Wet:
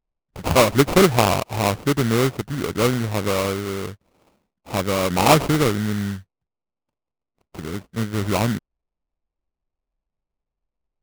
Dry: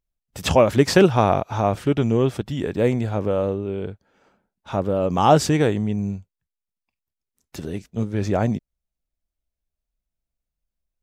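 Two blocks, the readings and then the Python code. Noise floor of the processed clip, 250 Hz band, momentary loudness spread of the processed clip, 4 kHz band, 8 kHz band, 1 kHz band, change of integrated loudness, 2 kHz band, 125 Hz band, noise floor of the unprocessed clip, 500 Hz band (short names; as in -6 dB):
under -85 dBFS, 0.0 dB, 15 LU, +5.0 dB, +6.0 dB, +0.5 dB, +0.5 dB, +5.0 dB, 0.0 dB, under -85 dBFS, -1.0 dB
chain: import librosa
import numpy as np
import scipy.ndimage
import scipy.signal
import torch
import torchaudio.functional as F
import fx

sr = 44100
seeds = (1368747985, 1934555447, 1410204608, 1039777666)

y = fx.sample_hold(x, sr, seeds[0], rate_hz=1700.0, jitter_pct=20)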